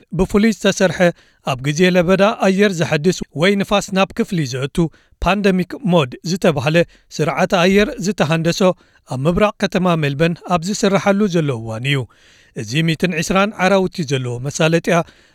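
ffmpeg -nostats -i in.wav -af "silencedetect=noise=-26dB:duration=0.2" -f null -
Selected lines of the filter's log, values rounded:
silence_start: 1.11
silence_end: 1.47 | silence_duration: 0.36
silence_start: 4.87
silence_end: 5.22 | silence_duration: 0.35
silence_start: 6.84
silence_end: 7.14 | silence_duration: 0.31
silence_start: 8.72
silence_end: 9.10 | silence_duration: 0.38
silence_start: 12.04
silence_end: 12.57 | silence_duration: 0.52
silence_start: 15.02
silence_end: 15.34 | silence_duration: 0.32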